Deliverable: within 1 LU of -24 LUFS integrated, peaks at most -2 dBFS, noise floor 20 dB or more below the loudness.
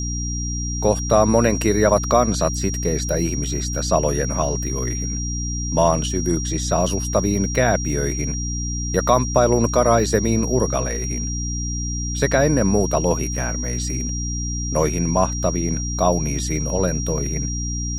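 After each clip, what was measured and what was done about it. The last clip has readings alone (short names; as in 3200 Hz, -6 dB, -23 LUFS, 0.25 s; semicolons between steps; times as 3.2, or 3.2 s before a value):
hum 60 Hz; harmonics up to 300 Hz; hum level -24 dBFS; steady tone 5700 Hz; tone level -28 dBFS; loudness -20.5 LUFS; peak -2.5 dBFS; loudness target -24.0 LUFS
-> notches 60/120/180/240/300 Hz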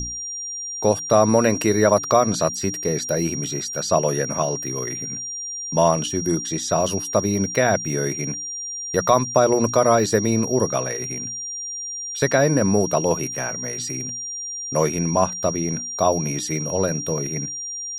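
hum none; steady tone 5700 Hz; tone level -28 dBFS
-> notch 5700 Hz, Q 30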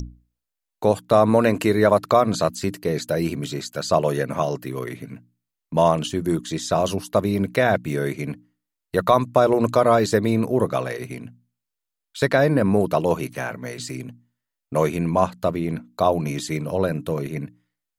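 steady tone none; loudness -22.0 LUFS; peak -3.5 dBFS; loudness target -24.0 LUFS
-> gain -2 dB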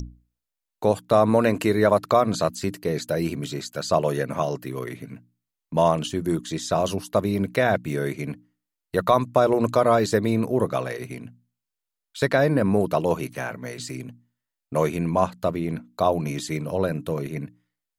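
loudness -23.5 LUFS; peak -5.5 dBFS; noise floor -86 dBFS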